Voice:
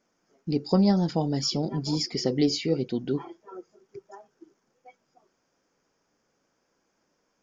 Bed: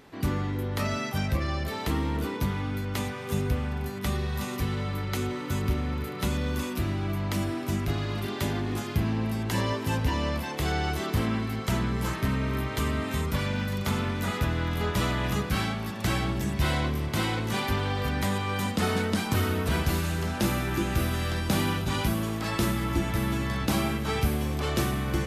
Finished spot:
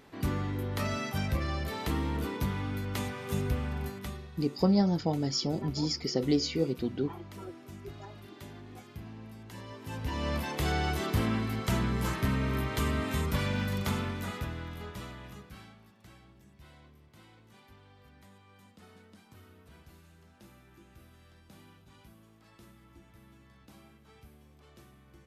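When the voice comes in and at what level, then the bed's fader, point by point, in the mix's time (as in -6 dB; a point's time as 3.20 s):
3.90 s, -3.5 dB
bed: 3.87 s -3.5 dB
4.31 s -18 dB
9.66 s -18 dB
10.35 s -2 dB
13.78 s -2 dB
16.22 s -29.5 dB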